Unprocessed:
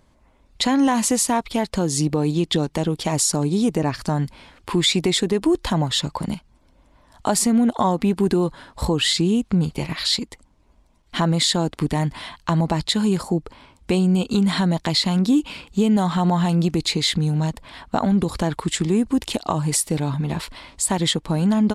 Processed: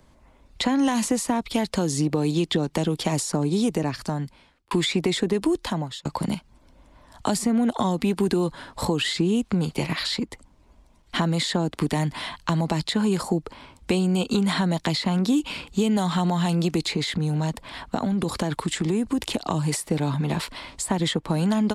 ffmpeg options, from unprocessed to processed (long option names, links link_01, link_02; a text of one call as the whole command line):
ffmpeg -i in.wav -filter_complex "[0:a]asettb=1/sr,asplit=3[link_01][link_02][link_03];[link_01]atrim=end=16.914[link_04];[link_02]atrim=start=16.91:end=19.51,asetpts=PTS-STARTPTS,afade=type=in:duration=0.004:curve=qsin,afade=type=out:start_time=2.596:duration=0.004:curve=qsin,acompressor=threshold=-19dB:ratio=6:attack=3.2:release=140:knee=1:detection=peak[link_05];[link_03]atrim=start=19.506[link_06];[link_04][link_05]acrossfade=duration=0.004:curve1=hsin:curve2=qsin[link_07];[link_07][link_06]acrossfade=duration=0.004:curve1=qsin:curve2=hsin,asplit=3[link_08][link_09][link_10];[link_08]atrim=end=4.71,asetpts=PTS-STARTPTS,afade=type=out:start_time=3.48:duration=1.23[link_11];[link_09]atrim=start=4.71:end=6.05,asetpts=PTS-STARTPTS,afade=type=in:duration=0.004:curve=hsin,afade=type=out:start_time=0.68:duration=0.66[link_12];[link_10]atrim=start=6.05,asetpts=PTS-STARTPTS,afade=type=in:duration=0.004:curve=hsin[link_13];[link_11][link_12][link_13]concat=n=3:v=0:a=1,acrossover=split=120|360|2300[link_14][link_15][link_16][link_17];[link_14]acompressor=threshold=-46dB:ratio=4[link_18];[link_15]acompressor=threshold=-26dB:ratio=4[link_19];[link_16]acompressor=threshold=-29dB:ratio=4[link_20];[link_17]acompressor=threshold=-33dB:ratio=4[link_21];[link_18][link_19][link_20][link_21]amix=inputs=4:normalize=0,volume=2.5dB" out.wav